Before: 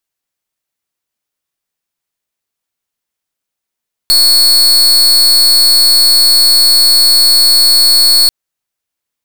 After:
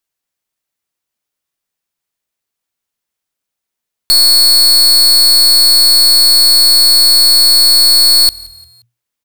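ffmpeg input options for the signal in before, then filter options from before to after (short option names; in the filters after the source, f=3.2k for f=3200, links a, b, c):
-f lavfi -i "aevalsrc='0.447*(2*lt(mod(4380*t,1),0.39)-1)':d=4.19:s=44100"
-filter_complex "[0:a]asplit=4[a][b][c][d];[b]adelay=176,afreqshift=-40,volume=-23.5dB[e];[c]adelay=352,afreqshift=-80,volume=-30.4dB[f];[d]adelay=528,afreqshift=-120,volume=-37.4dB[g];[a][e][f][g]amix=inputs=4:normalize=0"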